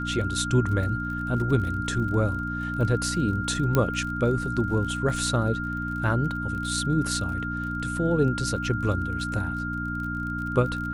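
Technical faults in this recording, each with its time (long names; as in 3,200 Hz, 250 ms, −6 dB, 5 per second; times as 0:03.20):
surface crackle 29 per second −34 dBFS
mains hum 60 Hz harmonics 5 −32 dBFS
whistle 1,400 Hz −31 dBFS
0:03.75: click −9 dBFS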